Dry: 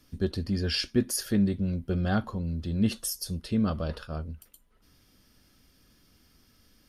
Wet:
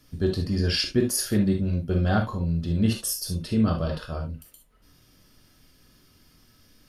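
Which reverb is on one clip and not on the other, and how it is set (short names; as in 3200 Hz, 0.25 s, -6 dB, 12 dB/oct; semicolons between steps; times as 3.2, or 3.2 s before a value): non-linear reverb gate 90 ms flat, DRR 2 dB; gain +2 dB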